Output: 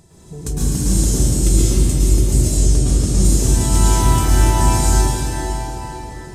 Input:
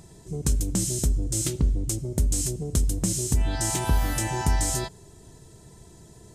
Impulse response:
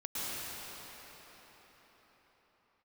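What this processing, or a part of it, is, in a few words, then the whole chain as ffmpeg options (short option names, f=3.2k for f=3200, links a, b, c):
cathedral: -filter_complex "[1:a]atrim=start_sample=2205[a];[0:a][a]afir=irnorm=-1:irlink=0,asettb=1/sr,asplit=3[b][c][d];[b]atrim=end=2.574[e];[c]atrim=start=2.57:end=3.25,asetpts=PTS-STARTPTS,afade=t=in:d=0.004:c=qsin,afade=t=out:st=0.676:d=0.004:c=qsin,lowpass=9.4k[f];[d]atrim=start=3.246[g];[e][f]acrossfade=d=0.004:c1=hsin:c2=qsin[h];[h][g]acrossfade=d=0.004:c1=qsin:c2=hsin,volume=4dB"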